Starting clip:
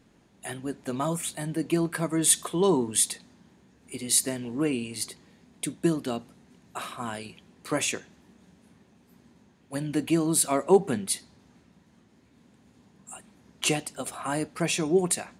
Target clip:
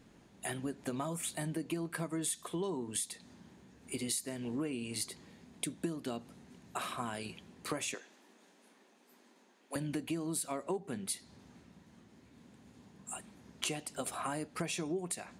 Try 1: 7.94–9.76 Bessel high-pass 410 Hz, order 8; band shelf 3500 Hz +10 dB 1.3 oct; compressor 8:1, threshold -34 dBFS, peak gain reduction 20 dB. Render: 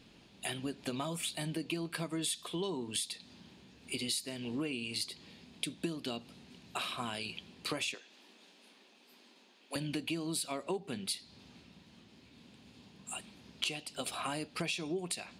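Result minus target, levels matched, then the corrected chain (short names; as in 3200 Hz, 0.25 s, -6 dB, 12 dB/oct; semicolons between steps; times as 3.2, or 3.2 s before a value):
4000 Hz band +6.0 dB
7.94–9.76 Bessel high-pass 410 Hz, order 8; compressor 8:1, threshold -34 dBFS, peak gain reduction 20 dB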